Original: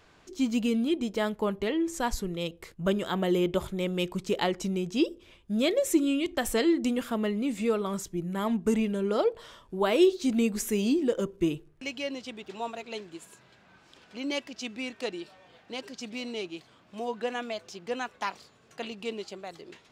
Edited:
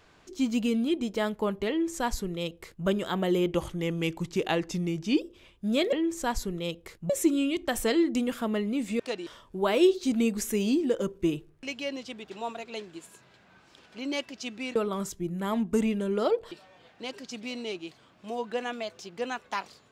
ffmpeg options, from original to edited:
-filter_complex "[0:a]asplit=9[a][b][c][d][e][f][g][h][i];[a]atrim=end=3.524[j];[b]atrim=start=3.52:end=5.08,asetpts=PTS-STARTPTS,asetrate=40572,aresample=44100,atrim=end_sample=74778,asetpts=PTS-STARTPTS[k];[c]atrim=start=5.076:end=5.792[l];[d]atrim=start=1.688:end=2.862[m];[e]atrim=start=5.788:end=7.692[n];[f]atrim=start=14.938:end=15.212[o];[g]atrim=start=9.448:end=14.942[p];[h]atrim=start=7.688:end=9.452[q];[i]atrim=start=15.208[r];[j][k]acrossfade=d=0.004:c1=hsin:c2=hsin[s];[s][l]acrossfade=d=0.004:c1=hsin:c2=hsin[t];[t][m]acrossfade=d=0.004:c1=hsin:c2=hsin[u];[u][n]acrossfade=d=0.004:c1=hsin:c2=hsin[v];[v][o]acrossfade=d=0.004:c1=hsin:c2=hsin[w];[w][p]acrossfade=d=0.004:c1=hsin:c2=hsin[x];[x][q]acrossfade=d=0.004:c1=hsin:c2=hsin[y];[y][r]acrossfade=d=0.004:c1=hsin:c2=hsin"

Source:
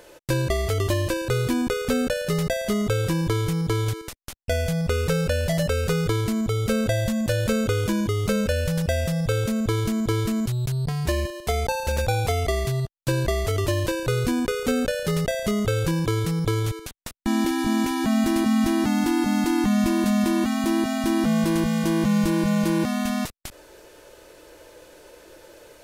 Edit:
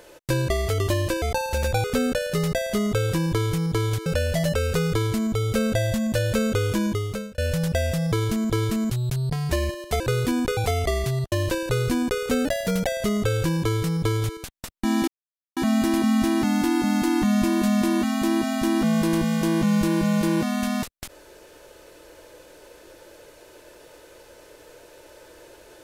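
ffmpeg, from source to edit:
-filter_complex "[0:a]asplit=13[a][b][c][d][e][f][g][h][i][j][k][l][m];[a]atrim=end=1.222[n];[b]atrim=start=11.558:end=12.182[o];[c]atrim=start=1.788:end=4.012[p];[d]atrim=start=5.198:end=8.52,asetpts=PTS-STARTPTS,afade=t=out:st=2.822:d=0.5[q];[e]atrim=start=8.52:end=9.262,asetpts=PTS-STARTPTS,afade=t=in:d=0.004:c=hsin[r];[f]atrim=start=9.678:end=11.562[s];[g]atrim=start=1.218:end=1.792[t];[h]atrim=start=12.178:end=12.932[u];[i]atrim=start=13.688:end=14.824[v];[j]atrim=start=14.82:end=15.29,asetpts=PTS-STARTPTS,asetrate=49833,aresample=44100,atrim=end_sample=18342,asetpts=PTS-STARTPTS[w];[k]atrim=start=15.286:end=17.5,asetpts=PTS-STARTPTS,afade=t=out:st=2.21:d=0.004:c=hsin[x];[l]atrim=start=17.5:end=17.99,asetpts=PTS-STARTPTS,volume=0[y];[m]atrim=start=17.99,asetpts=PTS-STARTPTS,afade=t=in:d=0.004:c=hsin[z];[n][o]acrossfade=d=0.004:c1=hsin:c2=hsin[aa];[aa][p]acrossfade=d=0.004:c1=hsin:c2=hsin[ab];[q][r]concat=n=2:v=0:a=1[ac];[ab][ac]acrossfade=d=0.004:c1=hsin:c2=hsin[ad];[ad][s]acrossfade=d=0.004:c1=hsin:c2=hsin[ae];[ae][t]acrossfade=d=0.004:c1=hsin:c2=hsin[af];[af][u]acrossfade=d=0.004:c1=hsin:c2=hsin[ag];[ag][v]acrossfade=d=0.004:c1=hsin:c2=hsin[ah];[ah][w]acrossfade=d=0.004:c1=hsin:c2=hsin[ai];[x][y][z]concat=n=3:v=0:a=1[aj];[ai][aj]acrossfade=d=0.004:c1=hsin:c2=hsin"

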